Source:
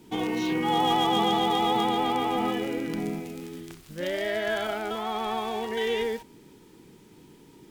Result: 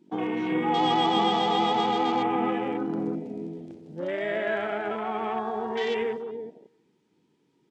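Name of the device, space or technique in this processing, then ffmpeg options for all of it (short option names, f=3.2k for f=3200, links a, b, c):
over-cleaned archive recording: -filter_complex "[0:a]highpass=130,lowpass=6.4k,asplit=2[a][b];[b]adelay=329,lowpass=f=2k:p=1,volume=-7dB,asplit=2[c][d];[d]adelay=329,lowpass=f=2k:p=1,volume=0.16,asplit=2[e][f];[f]adelay=329,lowpass=f=2k:p=1,volume=0.16[g];[a][c][e][g]amix=inputs=4:normalize=0,afwtdn=0.0158"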